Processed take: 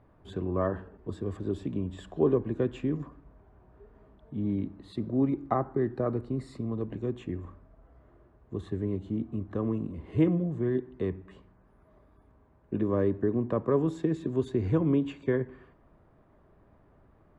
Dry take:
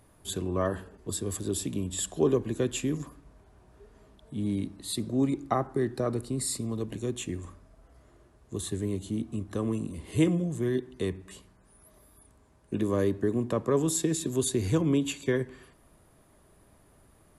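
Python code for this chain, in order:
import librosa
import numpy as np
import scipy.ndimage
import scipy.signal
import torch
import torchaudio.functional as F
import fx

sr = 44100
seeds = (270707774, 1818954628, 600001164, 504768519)

y = scipy.signal.sosfilt(scipy.signal.butter(2, 1600.0, 'lowpass', fs=sr, output='sos'), x)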